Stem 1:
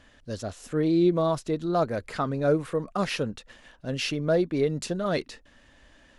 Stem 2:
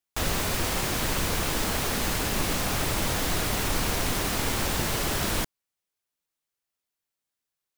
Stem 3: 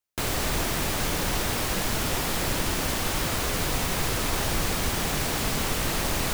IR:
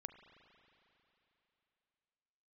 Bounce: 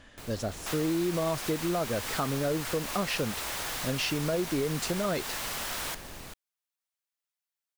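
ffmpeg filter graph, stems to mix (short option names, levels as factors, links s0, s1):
-filter_complex "[0:a]alimiter=limit=0.119:level=0:latency=1,volume=1.33[s0];[1:a]highpass=700,adelay=500,volume=0.562[s1];[2:a]volume=0.133[s2];[s0][s1][s2]amix=inputs=3:normalize=0,acompressor=threshold=0.0398:ratio=2.5"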